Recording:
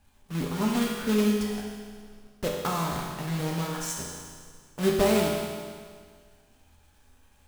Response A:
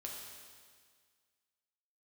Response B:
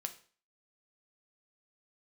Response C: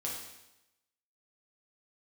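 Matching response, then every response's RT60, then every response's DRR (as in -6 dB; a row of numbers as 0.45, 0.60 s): A; 1.8, 0.40, 0.90 s; -2.0, 6.5, -4.5 dB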